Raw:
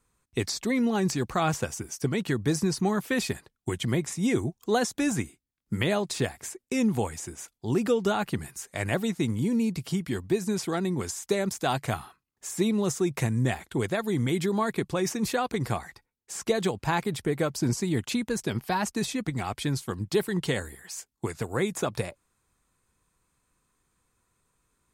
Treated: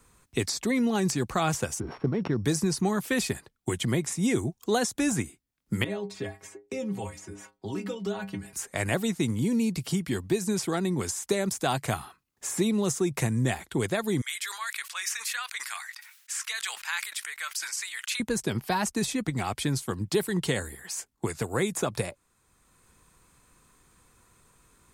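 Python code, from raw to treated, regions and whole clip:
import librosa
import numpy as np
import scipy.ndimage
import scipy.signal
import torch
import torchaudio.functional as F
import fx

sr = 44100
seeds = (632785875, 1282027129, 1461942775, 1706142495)

y = fx.chain(x, sr, fx.sample_sort(block=8),
    fx.lowpass(hz=1200.0, slope=12),
    fx.sustainer(db_per_s=110.0), at=(1.8, 2.45))
y = fx.chain(y, sr, fx.lowpass(hz=3300.0, slope=6),
    fx.stiff_resonator(f0_hz=96.0, decay_s=0.28, stiffness=0.008),
    fx.band_squash(depth_pct=40), at=(5.84, 8.53))
y = fx.chain(y, sr, fx.highpass(hz=1500.0, slope=24),
    fx.sustainer(db_per_s=75.0), at=(14.21, 18.2))
y = fx.dynamic_eq(y, sr, hz=9300.0, q=0.84, threshold_db=-48.0, ratio=4.0, max_db=5)
y = fx.band_squash(y, sr, depth_pct=40)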